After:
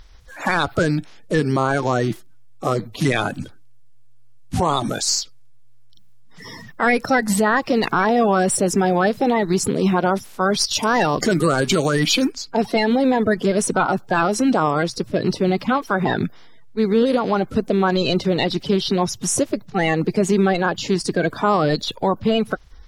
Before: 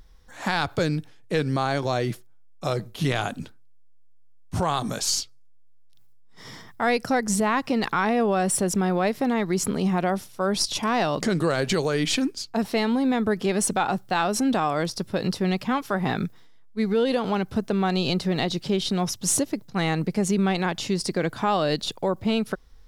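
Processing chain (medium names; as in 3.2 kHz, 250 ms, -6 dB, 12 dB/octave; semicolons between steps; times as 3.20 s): coarse spectral quantiser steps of 30 dB; treble shelf 6.9 kHz -3 dB, from 10.71 s +5 dB, from 12.32 s -7.5 dB; trim +6 dB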